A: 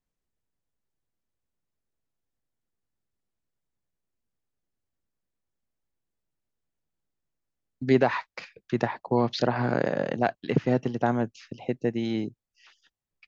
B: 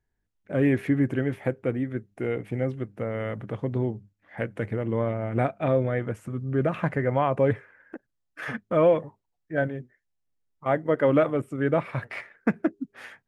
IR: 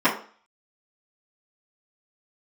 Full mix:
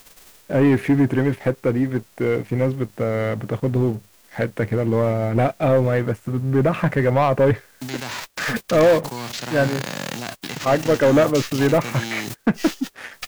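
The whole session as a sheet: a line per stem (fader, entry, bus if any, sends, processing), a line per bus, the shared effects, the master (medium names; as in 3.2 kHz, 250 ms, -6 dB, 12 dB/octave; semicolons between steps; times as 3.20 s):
-4.5 dB, 0.00 s, no send, formants flattened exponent 0.3; level flattener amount 100%; auto duck -9 dB, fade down 0.25 s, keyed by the second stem
+1.0 dB, 0.00 s, no send, waveshaping leveller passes 2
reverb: none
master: none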